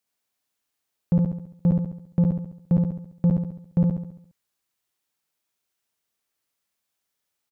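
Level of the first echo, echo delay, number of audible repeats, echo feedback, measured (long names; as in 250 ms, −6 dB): −3.0 dB, 69 ms, 6, 50%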